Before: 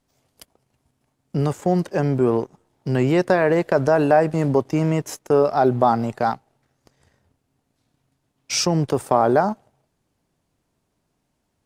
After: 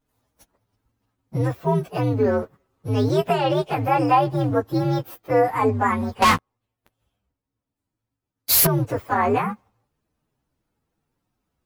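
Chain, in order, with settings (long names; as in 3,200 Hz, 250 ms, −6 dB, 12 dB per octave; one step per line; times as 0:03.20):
partials spread apart or drawn together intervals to 127%
0:06.22–0:08.67: leveller curve on the samples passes 5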